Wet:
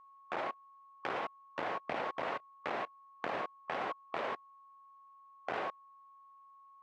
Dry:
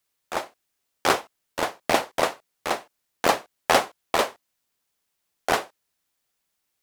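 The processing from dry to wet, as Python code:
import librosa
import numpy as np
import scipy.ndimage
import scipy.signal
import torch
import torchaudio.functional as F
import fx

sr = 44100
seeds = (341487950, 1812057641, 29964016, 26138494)

y = scipy.signal.sosfilt(scipy.signal.cheby1(2, 1.0, [120.0, 2300.0], 'bandpass', fs=sr, output='sos'), x)
y = fx.over_compress(y, sr, threshold_db=-29.0, ratio=-1.0)
y = y + 10.0 ** (-44.0 / 20.0) * np.sin(2.0 * np.pi * 1100.0 * np.arange(len(y)) / sr)
y = fx.level_steps(y, sr, step_db=23)
y = F.gain(torch.from_numpy(y), 9.5).numpy()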